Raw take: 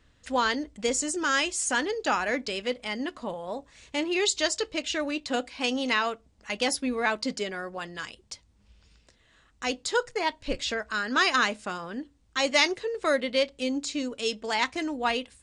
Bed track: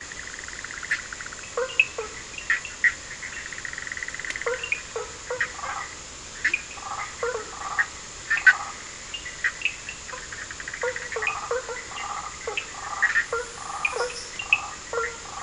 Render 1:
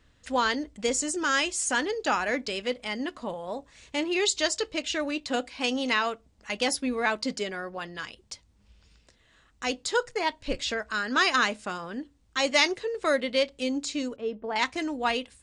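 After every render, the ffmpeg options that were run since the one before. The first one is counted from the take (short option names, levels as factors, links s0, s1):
-filter_complex "[0:a]asettb=1/sr,asplit=3[s0][s1][s2];[s0]atrim=end=7.564[s3];[s1]atrim=start=7.56:end=8.18,asetpts=PTS-STARTPTS,afade=t=in:d=0.004:c=qsin,afade=t=out:st=0.616:d=0.004:c=qsin,equalizer=f=7900:t=o:w=0.37:g=-10.5[s4];[s2]atrim=start=8.176[s5];[s3][s4]acrossfade=d=0.004:c1=hsin:c2=qsin[s6];[s6][s5]acrossfade=d=0.004:c1=qsin:c2=hsin,asettb=1/sr,asplit=3[s7][s8][s9];[s7]atrim=end=14.164[s10];[s8]atrim=start=14.16:end=14.56,asetpts=PTS-STARTPTS,afade=t=in:d=0.004:c=qsin,afade=t=out:st=0.396:d=0.004:c=qsin,lowpass=1100[s11];[s9]atrim=start=14.556[s12];[s10][s11]acrossfade=d=0.004:c1=hsin:c2=qsin[s13];[s13][s12]acrossfade=d=0.004:c1=qsin:c2=hsin"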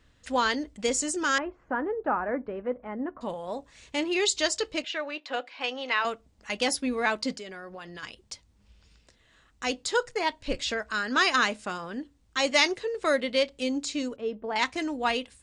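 -filter_complex "[0:a]asettb=1/sr,asplit=3[s0][s1][s2];[s0]atrim=end=1.384[s3];[s1]atrim=start=1.38:end=3.21,asetpts=PTS-STARTPTS,afade=t=in:d=0.004:c=qsin,afade=t=out:st=1.826:d=0.004:c=qsin,lowpass=f=1400:w=0.5412,lowpass=f=1400:w=1.3066[s4];[s2]atrim=start=3.206[s5];[s3][s4]acrossfade=d=0.004:c1=hsin:c2=qsin[s6];[s6][s5]acrossfade=d=0.004:c1=qsin:c2=hsin,asettb=1/sr,asplit=3[s7][s8][s9];[s7]atrim=end=4.844[s10];[s8]atrim=start=4.84:end=6.05,asetpts=PTS-STARTPTS,afade=t=in:d=0.004:c=qsin,afade=t=out:st=1.206:d=0.004:c=qsin,highpass=540,lowpass=3200[s11];[s9]atrim=start=6.046[s12];[s10][s11]acrossfade=d=0.004:c1=hsin:c2=qsin[s13];[s13][s12]acrossfade=d=0.004:c1=qsin:c2=hsin,asettb=1/sr,asplit=3[s14][s15][s16];[s14]atrim=end=7.344[s17];[s15]atrim=start=7.34:end=8.03,asetpts=PTS-STARTPTS,afade=t=in:d=0.004:c=qsin,afade=t=out:st=0.686:d=0.004:c=qsin,acompressor=threshold=0.0126:ratio=4:attack=3.2:release=140:knee=1:detection=peak[s18];[s16]atrim=start=8.026[s19];[s17][s18]acrossfade=d=0.004:c1=hsin:c2=qsin[s20];[s20][s19]acrossfade=d=0.004:c1=qsin:c2=hsin"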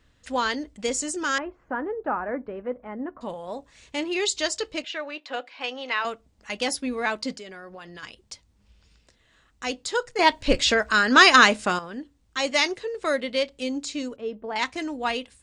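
-filter_complex "[0:a]asplit=3[s0][s1][s2];[s0]atrim=end=10.192[s3];[s1]atrim=start=10.188:end=11.792,asetpts=PTS-STARTPTS,volume=2.99[s4];[s2]atrim=start=11.788[s5];[s3][s4]acrossfade=d=0.004:c1=hsin:c2=hsin[s6];[s6][s5]acrossfade=d=0.004:c1=hsin:c2=hsin"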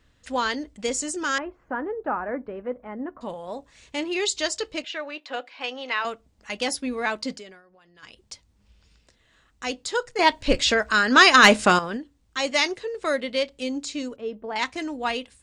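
-filter_complex "[0:a]asplit=3[s0][s1][s2];[s0]afade=t=out:st=11.43:d=0.02[s3];[s1]acontrast=90,afade=t=in:st=11.43:d=0.02,afade=t=out:st=11.96:d=0.02[s4];[s2]afade=t=in:st=11.96:d=0.02[s5];[s3][s4][s5]amix=inputs=3:normalize=0,asplit=3[s6][s7][s8];[s6]atrim=end=7.63,asetpts=PTS-STARTPTS,afade=t=out:st=7.39:d=0.24:silence=0.177828[s9];[s7]atrim=start=7.63:end=7.96,asetpts=PTS-STARTPTS,volume=0.178[s10];[s8]atrim=start=7.96,asetpts=PTS-STARTPTS,afade=t=in:d=0.24:silence=0.177828[s11];[s9][s10][s11]concat=n=3:v=0:a=1"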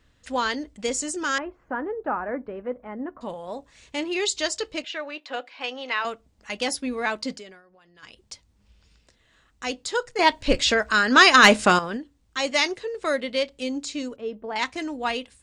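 -af anull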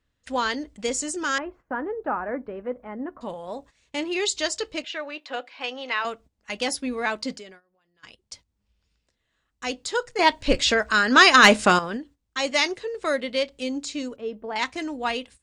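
-af "agate=range=0.224:threshold=0.00447:ratio=16:detection=peak"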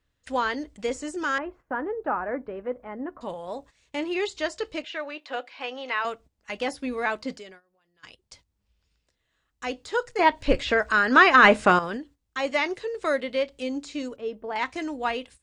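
-filter_complex "[0:a]acrossover=split=2600[s0][s1];[s1]acompressor=threshold=0.00794:ratio=4:attack=1:release=60[s2];[s0][s2]amix=inputs=2:normalize=0,equalizer=f=220:t=o:w=0.42:g=-4"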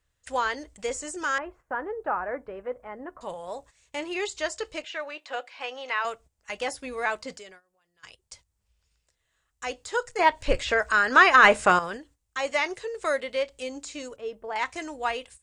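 -af "equalizer=f=250:t=o:w=1:g=-10,equalizer=f=4000:t=o:w=1:g=-3,equalizer=f=8000:t=o:w=1:g=8"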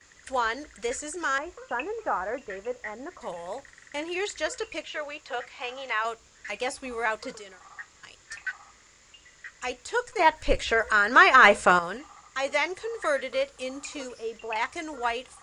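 -filter_complex "[1:a]volume=0.119[s0];[0:a][s0]amix=inputs=2:normalize=0"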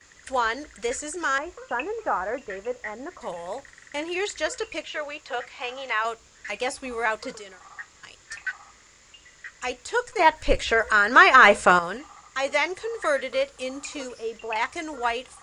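-af "volume=1.33,alimiter=limit=0.794:level=0:latency=1"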